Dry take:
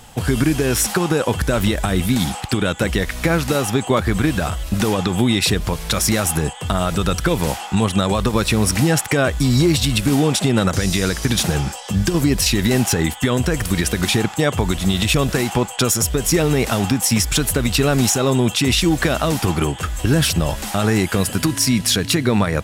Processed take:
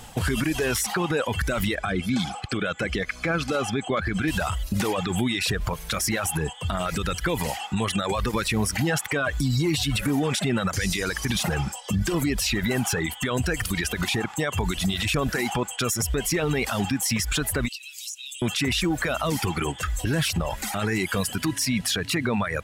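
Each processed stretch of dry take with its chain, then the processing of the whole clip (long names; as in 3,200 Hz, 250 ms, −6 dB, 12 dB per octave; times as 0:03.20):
0:01.75–0:04.28: high-frequency loss of the air 70 metres + notch comb filter 930 Hz
0:09.20–0:10.23: comb filter 6.8 ms, depth 49% + downward compressor 2.5 to 1, threshold −17 dBFS
0:17.68–0:18.42: elliptic high-pass filter 2,500 Hz, stop band 80 dB + downward compressor, threshold −31 dBFS
whole clip: dynamic equaliser 1,900 Hz, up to +6 dB, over −34 dBFS, Q 0.87; reverb reduction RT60 1.4 s; brickwall limiter −16 dBFS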